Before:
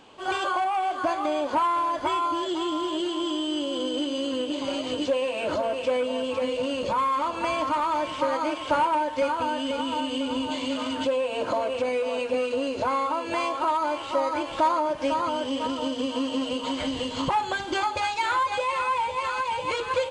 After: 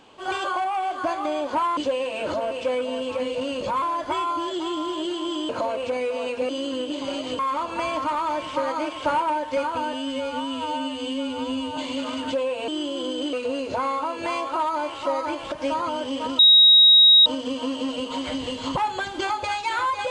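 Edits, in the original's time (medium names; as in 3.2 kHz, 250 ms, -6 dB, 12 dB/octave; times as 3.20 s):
3.44–4.09 s: swap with 11.41–12.41 s
4.99–7.04 s: move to 1.77 s
9.58–10.50 s: stretch 2×
14.60–14.92 s: delete
15.79 s: add tone 3.8 kHz -9.5 dBFS 0.87 s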